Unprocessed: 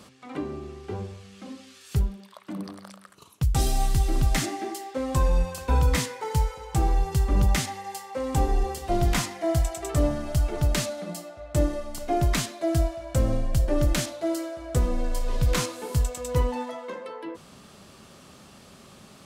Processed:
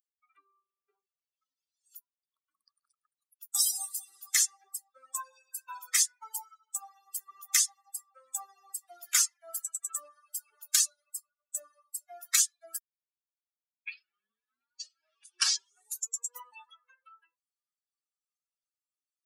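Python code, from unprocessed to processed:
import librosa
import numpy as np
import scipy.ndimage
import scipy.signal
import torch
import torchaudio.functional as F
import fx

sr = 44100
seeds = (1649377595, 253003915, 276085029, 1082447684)

y = fx.edit(x, sr, fx.tape_start(start_s=12.78, length_s=3.6), tone=tone)
y = fx.bin_expand(y, sr, power=3.0)
y = scipy.signal.sosfilt(scipy.signal.butter(4, 1400.0, 'highpass', fs=sr, output='sos'), y)
y = fx.high_shelf_res(y, sr, hz=4500.0, db=9.0, q=1.5)
y = F.gain(torch.from_numpy(y), 5.0).numpy()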